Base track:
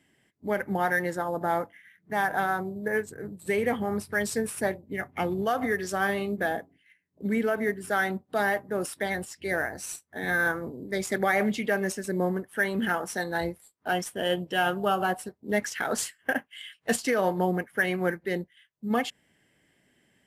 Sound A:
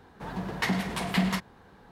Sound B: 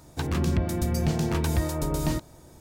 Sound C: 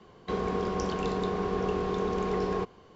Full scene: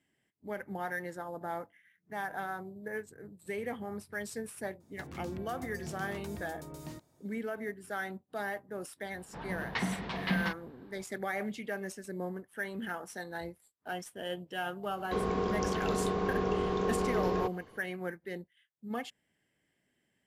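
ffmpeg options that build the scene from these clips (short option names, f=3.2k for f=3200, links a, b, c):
-filter_complex "[0:a]volume=-11dB[a];[2:a]highpass=100[b];[1:a]lowpass=f=4.8k:w=0.5412,lowpass=f=4.8k:w=1.3066[c];[b]atrim=end=2.6,asetpts=PTS-STARTPTS,volume=-17dB,afade=t=in:d=0.004:c=hsin,afade=t=out:st=2.596:d=0.004:c=hsin,adelay=4800[d];[c]atrim=end=1.91,asetpts=PTS-STARTPTS,volume=-5.5dB,afade=t=in:d=0.004:c=hsin,afade=t=out:st=1.906:d=0.004:c=hsin,adelay=9130[e];[3:a]atrim=end=2.95,asetpts=PTS-STARTPTS,volume=-1.5dB,afade=t=in:d=0.004:c=hsin,afade=t=out:st=2.946:d=0.004:c=hsin,adelay=14830[f];[a][d][e][f]amix=inputs=4:normalize=0"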